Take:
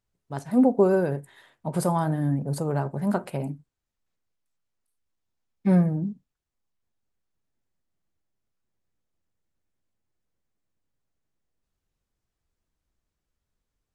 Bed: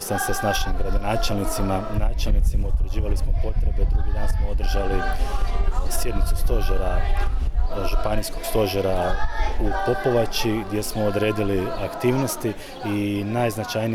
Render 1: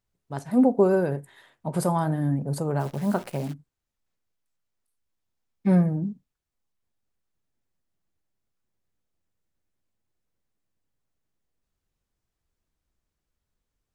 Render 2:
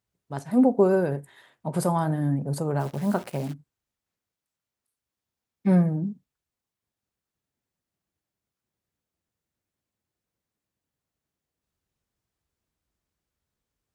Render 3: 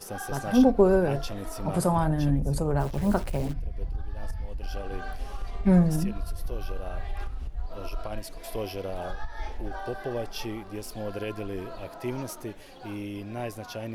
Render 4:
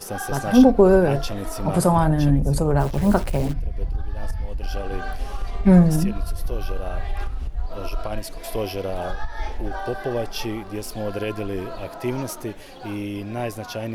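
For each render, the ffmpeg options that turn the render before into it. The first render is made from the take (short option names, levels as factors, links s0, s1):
-filter_complex "[0:a]asplit=3[s0][s1][s2];[s0]afade=t=out:st=2.79:d=0.02[s3];[s1]acrusher=bits=8:dc=4:mix=0:aa=0.000001,afade=t=in:st=2.79:d=0.02,afade=t=out:st=3.52:d=0.02[s4];[s2]afade=t=in:st=3.52:d=0.02[s5];[s3][s4][s5]amix=inputs=3:normalize=0"
-af "highpass=60"
-filter_complex "[1:a]volume=0.251[s0];[0:a][s0]amix=inputs=2:normalize=0"
-af "volume=2.11,alimiter=limit=0.708:level=0:latency=1"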